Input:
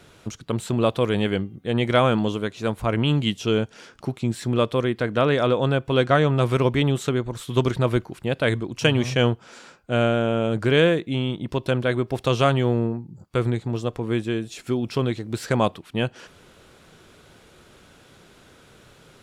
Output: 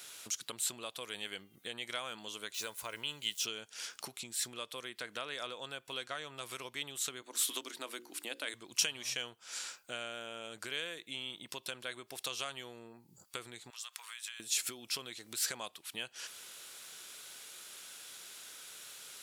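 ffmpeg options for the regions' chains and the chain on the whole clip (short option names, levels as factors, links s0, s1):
-filter_complex "[0:a]asettb=1/sr,asplit=3[s0][s1][s2];[s0]atrim=end=2.544[s3];[s1]atrim=start=2.54:end=3.45,asetpts=PTS-STARTPTS,afade=t=in:d=0.004:c=qsin,afade=t=out:st=0.906:d=0.004:c=qsin,aeval=exprs='val(0)*gte(abs(val(0)),0.00398)':c=same,aecho=1:1:2:0.32,atrim=end_sample=40131[s4];[s2]atrim=start=3.446[s5];[s3][s4]acrossfade=d=0.004:c1=hsin:c2=qsin[s6];[s6][s5]acrossfade=d=0.004:c1=qsin:c2=hsin,asettb=1/sr,asplit=3[s7][s8][s9];[s7]atrim=end=7.224[s10];[s8]atrim=start=7.22:end=8.54,asetpts=PTS-STARTPTS,afade=t=in:d=0.004:c=qsin,afade=t=out:st=1.316:d=0.004:c=qsin,highpass=f=210:w=0.5412,highpass=f=210:w=1.3066,equalizer=f=290:w=5.8:g=12,bandreject=f=60:t=h:w=6,bandreject=f=120:t=h:w=6,bandreject=f=180:t=h:w=6,bandreject=f=240:t=h:w=6,bandreject=f=300:t=h:w=6,bandreject=f=360:t=h:w=6,bandreject=f=420:t=h:w=6,bandreject=f=480:t=h:w=6,bandreject=f=540:t=h:w=6[s11];[s9]atrim=start=8.536[s12];[s10][s11]acrossfade=d=0.004:c1=hsin:c2=qsin[s13];[s13][s12]acrossfade=d=0.004:c1=qsin:c2=hsin,asettb=1/sr,asplit=3[s14][s15][s16];[s14]atrim=end=13.704[s17];[s15]atrim=start=13.7:end=14.4,asetpts=PTS-STARTPTS,afade=t=in:d=0.004:c=qsin,afade=t=out:st=0.696:d=0.004:c=qsin,highpass=f=1100:w=0.5412,highpass=f=1100:w=1.3066,acompressor=threshold=0.00708:ratio=10:attack=3.2:release=140:knee=1:detection=peak[s18];[s16]atrim=start=14.396[s19];[s17][s18]acrossfade=d=0.004:c1=hsin:c2=qsin[s20];[s20][s19]acrossfade=d=0.004:c1=qsin:c2=hsin,acompressor=threshold=0.0282:ratio=8,aderivative,volume=3.55"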